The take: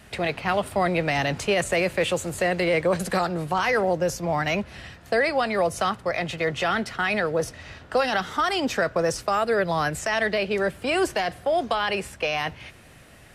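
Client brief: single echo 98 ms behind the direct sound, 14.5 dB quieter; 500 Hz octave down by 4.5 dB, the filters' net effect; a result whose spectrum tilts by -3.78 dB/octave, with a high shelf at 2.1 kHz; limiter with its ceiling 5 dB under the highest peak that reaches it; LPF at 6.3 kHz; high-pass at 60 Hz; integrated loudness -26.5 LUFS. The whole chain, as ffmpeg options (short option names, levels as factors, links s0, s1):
-af "highpass=60,lowpass=6300,equalizer=f=500:t=o:g=-6,highshelf=f=2100:g=4.5,alimiter=limit=0.15:level=0:latency=1,aecho=1:1:98:0.188,volume=1.06"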